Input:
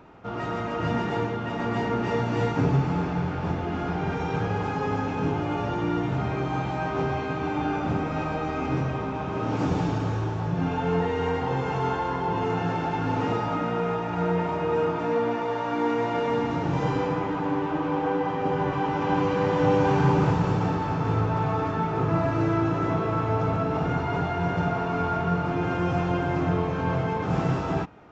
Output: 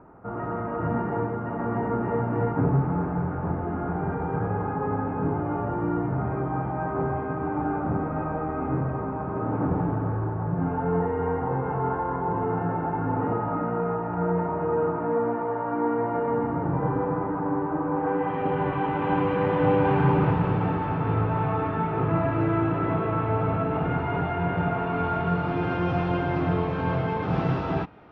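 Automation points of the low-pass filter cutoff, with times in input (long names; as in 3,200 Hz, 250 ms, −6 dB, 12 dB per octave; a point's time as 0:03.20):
low-pass filter 24 dB per octave
0:17.91 1,500 Hz
0:18.38 2,900 Hz
0:24.71 2,900 Hz
0:25.60 4,400 Hz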